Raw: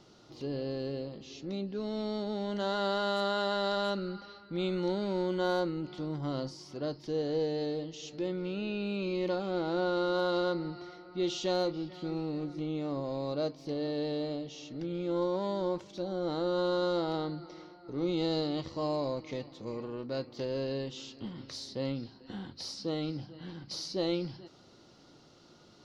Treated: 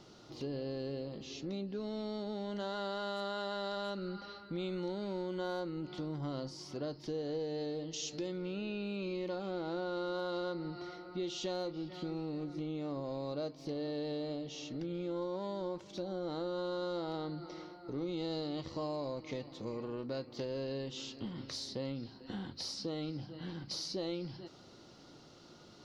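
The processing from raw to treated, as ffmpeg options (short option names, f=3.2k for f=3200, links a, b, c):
-filter_complex "[0:a]asettb=1/sr,asplit=3[a][b][c];[a]atrim=end=7.934[d];[b]atrim=start=7.93:end=8.38,asetpts=PTS-STARTPTS,afade=t=in:d=0.004:c=qsin,afade=t=out:st=0.446:d=0.004:c=qsin,equalizer=f=6.3k:w=0.76:g=8.5[e];[c]atrim=start=8.376[f];[d][e]acrossfade=d=0.004:c1=hsin:c2=qsin[g];[g][f]acrossfade=d=0.004:c1=qsin:c2=hsin,acompressor=threshold=-39dB:ratio=3,volume=1.5dB"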